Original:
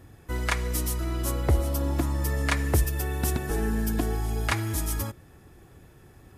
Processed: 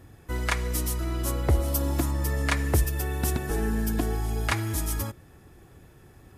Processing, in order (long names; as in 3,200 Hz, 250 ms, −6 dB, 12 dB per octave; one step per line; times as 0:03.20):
0:01.68–0:02.11: high-shelf EQ 4,800 Hz +7.5 dB